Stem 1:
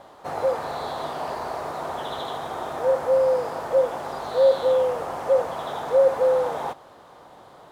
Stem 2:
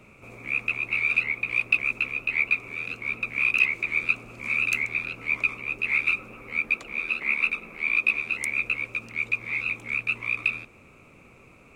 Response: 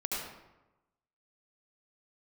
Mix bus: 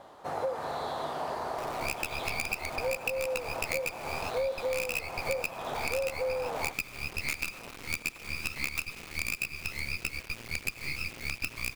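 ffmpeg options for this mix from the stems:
-filter_complex "[0:a]volume=-4dB[a];[1:a]aemphasis=mode=reproduction:type=50fm,acrusher=bits=4:dc=4:mix=0:aa=0.000001,adelay=1350,volume=0dB,asplit=2[b][c];[c]volume=-21.5dB[d];[2:a]atrim=start_sample=2205[e];[d][e]afir=irnorm=-1:irlink=0[f];[a][b][f]amix=inputs=3:normalize=0,acompressor=threshold=-28dB:ratio=10"

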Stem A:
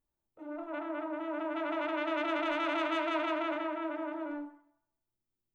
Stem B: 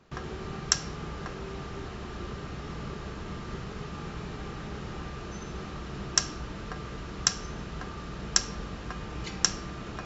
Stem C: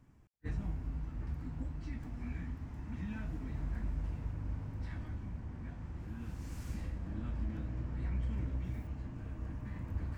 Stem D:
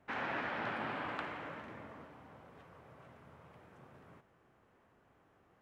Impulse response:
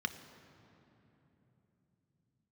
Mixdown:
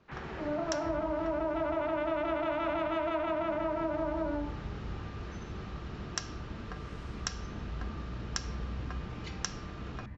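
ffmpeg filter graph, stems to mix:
-filter_complex "[0:a]equalizer=f=590:w=0.6:g=11,volume=0.5dB[a];[1:a]volume=-5dB[b];[2:a]adelay=400,volume=-3dB[c];[3:a]volume=-8.5dB[d];[a][b][c][d]amix=inputs=4:normalize=0,lowpass=4.9k,acompressor=threshold=-29dB:ratio=6"

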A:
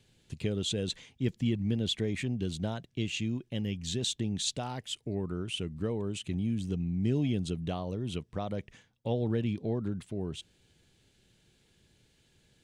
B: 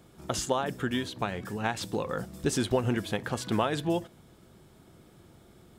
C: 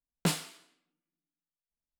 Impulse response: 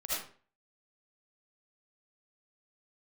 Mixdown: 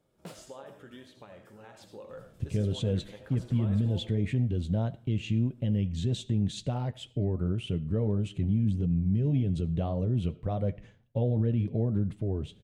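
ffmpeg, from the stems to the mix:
-filter_complex "[0:a]bass=f=250:g=13,treble=f=4k:g=-11,adelay=2100,volume=0dB,asplit=2[a][b];[b]volume=-23dB[c];[1:a]bandreject=f=700:w=12,alimiter=limit=-20dB:level=0:latency=1:release=109,volume=-16.5dB,asplit=2[d][e];[e]volume=-8dB[f];[2:a]highshelf=f=6k:g=-10.5,volume=-14dB[g];[a][g]amix=inputs=2:normalize=0,highshelf=f=10k:g=9,alimiter=limit=-17dB:level=0:latency=1:release=39,volume=0dB[h];[3:a]atrim=start_sample=2205[i];[c][f]amix=inputs=2:normalize=0[j];[j][i]afir=irnorm=-1:irlink=0[k];[d][h][k]amix=inputs=3:normalize=0,equalizer=f=560:t=o:w=0.73:g=9,flanger=delay=6.6:depth=3.8:regen=-52:speed=1.8:shape=triangular"

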